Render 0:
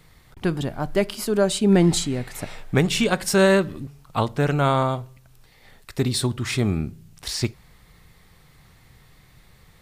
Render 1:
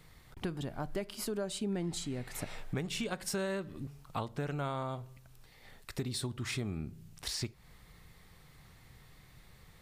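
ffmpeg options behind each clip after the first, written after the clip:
ffmpeg -i in.wav -af "acompressor=threshold=-30dB:ratio=4,volume=-5dB" out.wav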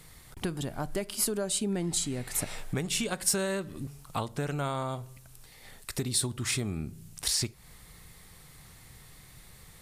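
ffmpeg -i in.wav -af "equalizer=frequency=9900:width_type=o:width=1.4:gain=11,volume=4dB" out.wav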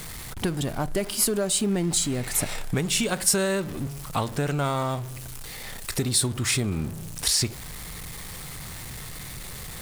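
ffmpeg -i in.wav -af "aeval=exprs='val(0)+0.5*0.0106*sgn(val(0))':channel_layout=same,volume=5dB" out.wav

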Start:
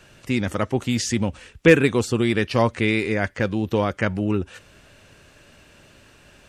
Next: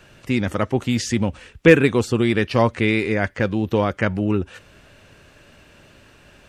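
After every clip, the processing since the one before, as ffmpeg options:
ffmpeg -i in.wav -af "equalizer=frequency=8400:width_type=o:width=1.8:gain=-4.5,volume=2dB" out.wav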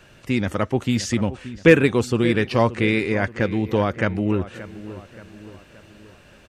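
ffmpeg -i in.wav -filter_complex "[0:a]asplit=2[link_01][link_02];[link_02]adelay=576,lowpass=frequency=2500:poles=1,volume=-15dB,asplit=2[link_03][link_04];[link_04]adelay=576,lowpass=frequency=2500:poles=1,volume=0.5,asplit=2[link_05][link_06];[link_06]adelay=576,lowpass=frequency=2500:poles=1,volume=0.5,asplit=2[link_07][link_08];[link_08]adelay=576,lowpass=frequency=2500:poles=1,volume=0.5,asplit=2[link_09][link_10];[link_10]adelay=576,lowpass=frequency=2500:poles=1,volume=0.5[link_11];[link_01][link_03][link_05][link_07][link_09][link_11]amix=inputs=6:normalize=0,volume=-1dB" out.wav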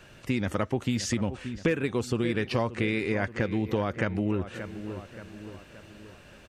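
ffmpeg -i in.wav -af "acompressor=threshold=-22dB:ratio=6,volume=-1.5dB" out.wav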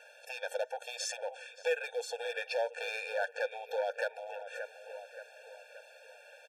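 ffmpeg -i in.wav -af "asoftclip=type=hard:threshold=-22.5dB,afftfilt=real='re*eq(mod(floor(b*sr/1024/460),2),1)':imag='im*eq(mod(floor(b*sr/1024/460),2),1)':win_size=1024:overlap=0.75" out.wav

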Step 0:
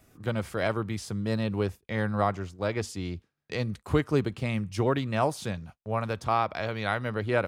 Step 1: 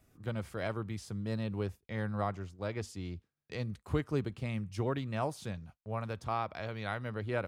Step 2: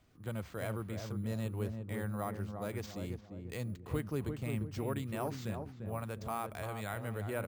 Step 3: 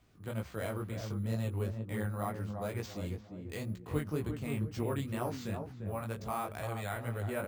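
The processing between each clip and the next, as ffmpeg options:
ffmpeg -i in.wav -af "lowshelf=frequency=160:gain=5,volume=-9dB" out.wav
ffmpeg -i in.wav -filter_complex "[0:a]asplit=2[link_01][link_02];[link_02]alimiter=level_in=6dB:limit=-24dB:level=0:latency=1,volume=-6dB,volume=-0.5dB[link_03];[link_01][link_03]amix=inputs=2:normalize=0,acrusher=samples=4:mix=1:aa=0.000001,asplit=2[link_04][link_05];[link_05]adelay=347,lowpass=frequency=820:poles=1,volume=-4.5dB,asplit=2[link_06][link_07];[link_07]adelay=347,lowpass=frequency=820:poles=1,volume=0.47,asplit=2[link_08][link_09];[link_09]adelay=347,lowpass=frequency=820:poles=1,volume=0.47,asplit=2[link_10][link_11];[link_11]adelay=347,lowpass=frequency=820:poles=1,volume=0.47,asplit=2[link_12][link_13];[link_13]adelay=347,lowpass=frequency=820:poles=1,volume=0.47,asplit=2[link_14][link_15];[link_15]adelay=347,lowpass=frequency=820:poles=1,volume=0.47[link_16];[link_04][link_06][link_08][link_10][link_12][link_14][link_16]amix=inputs=7:normalize=0,volume=-7dB" out.wav
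ffmpeg -i in.wav -af "flanger=delay=16.5:depth=4.9:speed=2.1,volume=4.5dB" out.wav

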